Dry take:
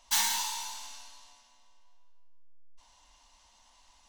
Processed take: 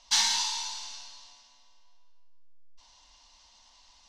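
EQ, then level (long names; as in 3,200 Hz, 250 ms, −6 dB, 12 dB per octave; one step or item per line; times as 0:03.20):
high-frequency loss of the air 74 metres
parametric band 4,900 Hz +11 dB 1.2 octaves
0.0 dB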